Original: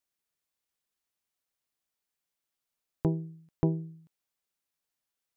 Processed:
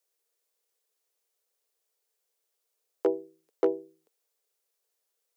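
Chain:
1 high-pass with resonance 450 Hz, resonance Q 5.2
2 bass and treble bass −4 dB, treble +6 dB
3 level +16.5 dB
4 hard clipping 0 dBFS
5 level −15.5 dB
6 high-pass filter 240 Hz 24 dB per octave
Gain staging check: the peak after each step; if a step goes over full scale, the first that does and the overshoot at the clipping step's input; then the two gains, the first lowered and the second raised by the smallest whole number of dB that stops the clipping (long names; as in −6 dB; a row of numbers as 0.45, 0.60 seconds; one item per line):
−11.5, −12.0, +4.5, 0.0, −15.5, −13.5 dBFS
step 3, 4.5 dB
step 3 +11.5 dB, step 5 −10.5 dB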